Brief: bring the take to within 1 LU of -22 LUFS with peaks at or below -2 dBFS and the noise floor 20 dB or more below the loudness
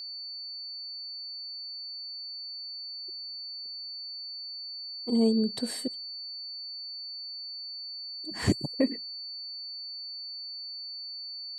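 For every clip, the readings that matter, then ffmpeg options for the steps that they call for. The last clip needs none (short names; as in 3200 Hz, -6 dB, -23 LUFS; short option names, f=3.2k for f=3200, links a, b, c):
steady tone 4500 Hz; tone level -37 dBFS; loudness -34.0 LUFS; peak -12.0 dBFS; loudness target -22.0 LUFS
-> -af "bandreject=f=4.5k:w=30"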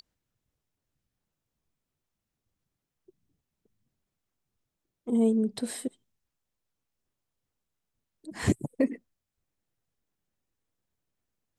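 steady tone none; loudness -29.0 LUFS; peak -12.5 dBFS; loudness target -22.0 LUFS
-> -af "volume=7dB"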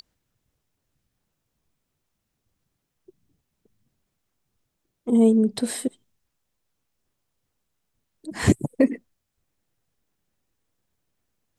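loudness -22.0 LUFS; peak -5.5 dBFS; noise floor -79 dBFS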